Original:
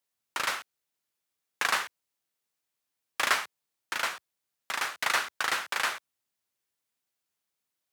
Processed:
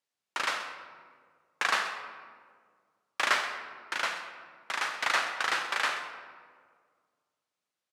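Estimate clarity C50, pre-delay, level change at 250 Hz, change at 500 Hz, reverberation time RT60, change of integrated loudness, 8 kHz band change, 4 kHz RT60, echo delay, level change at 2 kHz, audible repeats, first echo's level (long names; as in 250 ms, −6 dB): 6.5 dB, 30 ms, 0.0 dB, +1.0 dB, 1.9 s, −1.0 dB, −4.0 dB, 1.0 s, 129 ms, +0.5 dB, 1, −14.5 dB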